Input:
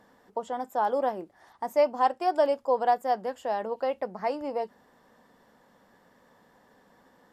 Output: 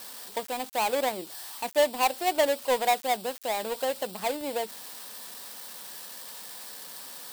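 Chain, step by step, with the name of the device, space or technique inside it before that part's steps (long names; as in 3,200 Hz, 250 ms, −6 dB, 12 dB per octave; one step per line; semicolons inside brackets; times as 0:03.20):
budget class-D amplifier (gap after every zero crossing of 0.22 ms; spike at every zero crossing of −25 dBFS)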